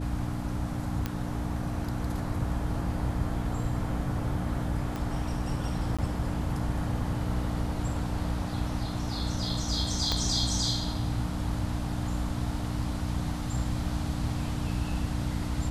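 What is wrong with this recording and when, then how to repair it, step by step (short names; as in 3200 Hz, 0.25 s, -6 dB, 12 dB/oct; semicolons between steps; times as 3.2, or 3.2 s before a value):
hum 60 Hz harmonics 5 -34 dBFS
1.06 pop -16 dBFS
4.96 pop -21 dBFS
5.97–5.99 gap 16 ms
10.12 pop -14 dBFS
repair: de-click; de-hum 60 Hz, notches 5; interpolate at 5.97, 16 ms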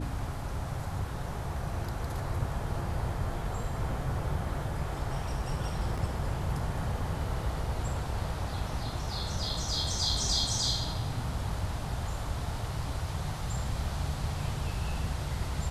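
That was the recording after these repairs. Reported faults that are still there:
4.96 pop
10.12 pop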